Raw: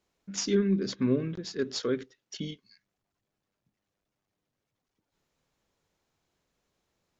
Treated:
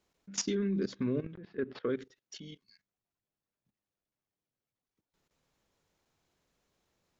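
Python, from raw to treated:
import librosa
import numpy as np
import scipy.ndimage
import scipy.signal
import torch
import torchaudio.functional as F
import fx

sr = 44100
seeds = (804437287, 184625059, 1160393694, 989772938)

y = fx.lowpass(x, sr, hz=2500.0, slope=24, at=(1.34, 1.9))
y = fx.level_steps(y, sr, step_db=16)
y = y * librosa.db_to_amplitude(1.5)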